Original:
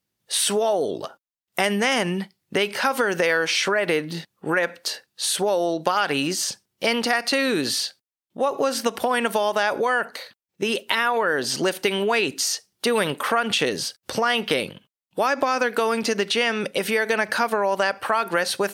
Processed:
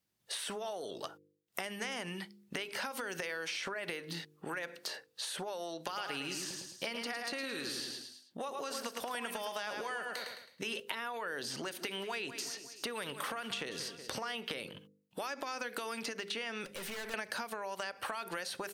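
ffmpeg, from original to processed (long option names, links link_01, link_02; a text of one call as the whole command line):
ffmpeg -i in.wav -filter_complex "[0:a]asettb=1/sr,asplit=3[link_01][link_02][link_03];[link_01]atrim=end=5.764[link_04];[link_02]atrim=start=5.76:end=10.8,asetpts=PTS-STARTPTS,afade=type=in:duration=0.004:curve=qsin,afade=type=out:start_time=5.036:duration=0.004:curve=qsin,aecho=1:1:107|214|321|428:0.447|0.156|0.0547|0.0192,atrim=end_sample=222264[link_05];[link_03]atrim=start=10.796[link_06];[link_04][link_05]acrossfade=duration=0.004:curve1=hsin:curve2=qsin[link_07];[link_07][link_06]acrossfade=duration=0.004:curve1=qsin:curve2=hsin,asplit=3[link_08][link_09][link_10];[link_08]afade=type=out:start_time=11.71:duration=0.02[link_11];[link_09]aecho=1:1:185|370|555:0.126|0.0478|0.0182,afade=type=in:start_time=11.71:duration=0.02,afade=type=out:start_time=14.27:duration=0.02[link_12];[link_10]afade=type=in:start_time=14.27:duration=0.02[link_13];[link_11][link_12][link_13]amix=inputs=3:normalize=0,asettb=1/sr,asplit=3[link_14][link_15][link_16];[link_14]atrim=end=16.654[link_17];[link_15]atrim=start=16.65:end=17.14,asetpts=PTS-STARTPTS,afade=type=in:duration=0.004:curve=qsin,afade=type=out:start_time=0.486:duration=0.004:curve=qsin,aeval=exprs='(tanh(50.1*val(0)+0.3)-tanh(0.3))/50.1':channel_layout=same[link_18];[link_16]atrim=start=17.136[link_19];[link_17][link_18]acrossfade=duration=0.004:curve1=hsin:curve2=qsin[link_20];[link_20][link_19]acrossfade=duration=0.004:curve1=qsin:curve2=hsin,acompressor=threshold=-23dB:ratio=6,bandreject=frequency=50.54:width_type=h:width=4,bandreject=frequency=101.08:width_type=h:width=4,bandreject=frequency=151.62:width_type=h:width=4,bandreject=frequency=202.16:width_type=h:width=4,bandreject=frequency=252.7:width_type=h:width=4,bandreject=frequency=303.24:width_type=h:width=4,bandreject=frequency=353.78:width_type=h:width=4,bandreject=frequency=404.32:width_type=h:width=4,bandreject=frequency=454.86:width_type=h:width=4,bandreject=frequency=505.4:width_type=h:width=4,acrossover=split=960|2500[link_21][link_22][link_23];[link_21]acompressor=threshold=-40dB:ratio=4[link_24];[link_22]acompressor=threshold=-40dB:ratio=4[link_25];[link_23]acompressor=threshold=-39dB:ratio=4[link_26];[link_24][link_25][link_26]amix=inputs=3:normalize=0,volume=-3.5dB" out.wav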